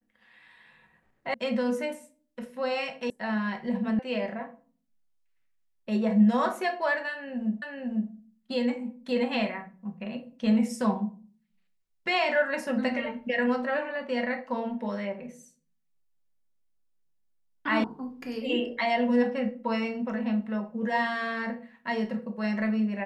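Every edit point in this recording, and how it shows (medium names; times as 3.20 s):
1.34 s: sound stops dead
3.10 s: sound stops dead
3.99 s: sound stops dead
7.62 s: repeat of the last 0.5 s
17.84 s: sound stops dead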